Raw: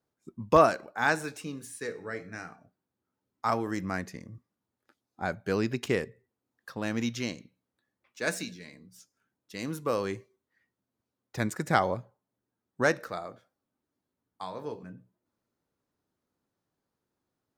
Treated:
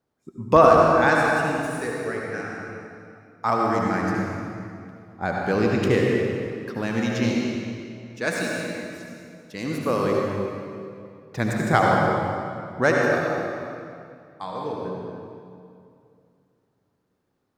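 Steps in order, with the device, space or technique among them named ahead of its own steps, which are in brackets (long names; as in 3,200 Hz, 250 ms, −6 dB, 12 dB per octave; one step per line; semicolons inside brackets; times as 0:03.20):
swimming-pool hall (convolution reverb RT60 2.5 s, pre-delay 65 ms, DRR −2 dB; high-shelf EQ 4,300 Hz −7 dB)
level +5 dB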